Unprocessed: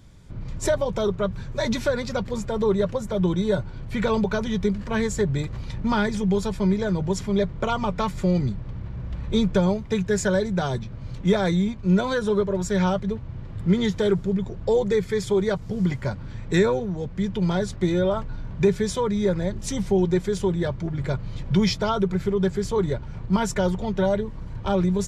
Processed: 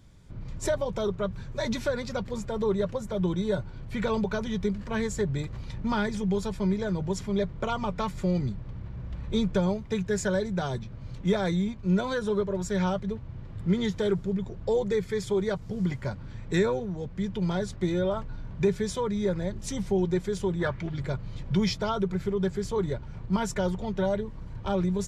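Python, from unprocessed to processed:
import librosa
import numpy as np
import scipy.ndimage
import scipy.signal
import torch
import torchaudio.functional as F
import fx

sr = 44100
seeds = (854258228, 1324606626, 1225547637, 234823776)

y = fx.peak_eq(x, sr, hz=fx.line((20.59, 1000.0), (20.99, 4700.0)), db=13.0, octaves=1.2, at=(20.59, 20.99), fade=0.02)
y = y * 10.0 ** (-5.0 / 20.0)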